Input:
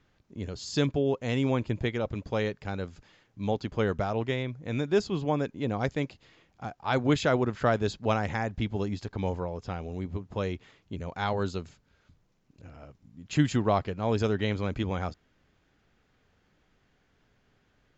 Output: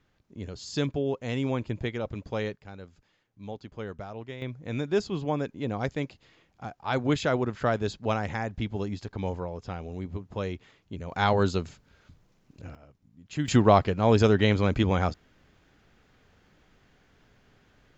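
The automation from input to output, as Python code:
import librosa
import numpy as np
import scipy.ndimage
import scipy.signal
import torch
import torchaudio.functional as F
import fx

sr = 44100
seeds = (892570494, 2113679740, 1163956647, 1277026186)

y = fx.gain(x, sr, db=fx.steps((0.0, -2.0), (2.56, -10.0), (4.42, -1.0), (11.11, 6.0), (12.75, -6.0), (13.48, 6.5)))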